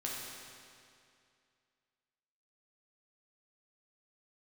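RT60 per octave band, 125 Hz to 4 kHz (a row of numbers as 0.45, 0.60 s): 2.4, 2.4, 2.4, 2.4, 2.3, 2.2 s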